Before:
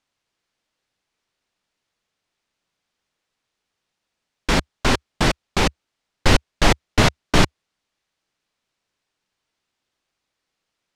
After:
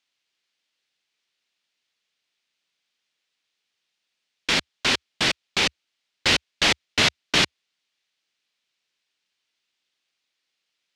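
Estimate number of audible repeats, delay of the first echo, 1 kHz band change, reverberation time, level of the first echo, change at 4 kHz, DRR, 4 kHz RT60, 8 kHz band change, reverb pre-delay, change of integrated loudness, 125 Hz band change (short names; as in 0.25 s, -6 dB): none, none, -7.0 dB, none, none, +3.5 dB, none, none, -0.5 dB, none, -1.0 dB, -13.5 dB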